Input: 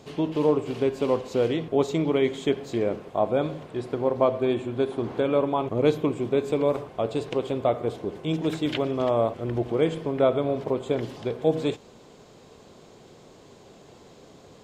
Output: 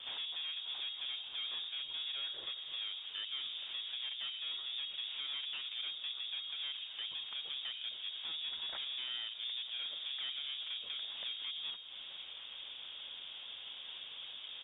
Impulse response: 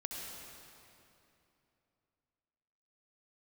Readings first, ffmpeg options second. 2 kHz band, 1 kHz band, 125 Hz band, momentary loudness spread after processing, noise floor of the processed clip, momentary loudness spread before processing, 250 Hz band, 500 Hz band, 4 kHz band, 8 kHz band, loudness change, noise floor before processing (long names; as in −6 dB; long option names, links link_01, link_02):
−8.0 dB, −26.0 dB, below −40 dB, 7 LU, −49 dBFS, 6 LU, below −40 dB, below −40 dB, +6.5 dB, can't be measured, −13.5 dB, −51 dBFS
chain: -filter_complex "[0:a]acompressor=threshold=-37dB:ratio=6,aeval=exprs='(tanh(158*val(0)+0.4)-tanh(0.4))/158':channel_layout=same,asplit=2[link_01][link_02];[link_02]adelay=487,lowpass=frequency=990:poles=1,volume=-11.5dB,asplit=2[link_03][link_04];[link_04]adelay=487,lowpass=frequency=990:poles=1,volume=0.24,asplit=2[link_05][link_06];[link_06]adelay=487,lowpass=frequency=990:poles=1,volume=0.24[link_07];[link_03][link_05][link_07]amix=inputs=3:normalize=0[link_08];[link_01][link_08]amix=inputs=2:normalize=0,lowpass=frequency=3100:width_type=q:width=0.5098,lowpass=frequency=3100:width_type=q:width=0.6013,lowpass=frequency=3100:width_type=q:width=0.9,lowpass=frequency=3100:width_type=q:width=2.563,afreqshift=-3700,volume=5.5dB" -ar 48000 -c:a libopus -b:a 24k